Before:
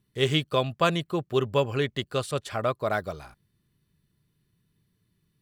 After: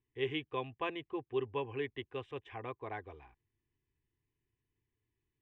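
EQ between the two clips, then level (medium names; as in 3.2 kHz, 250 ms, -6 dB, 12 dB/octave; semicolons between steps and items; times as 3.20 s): low-pass 3.6 kHz 24 dB/octave; static phaser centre 900 Hz, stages 8; -9.0 dB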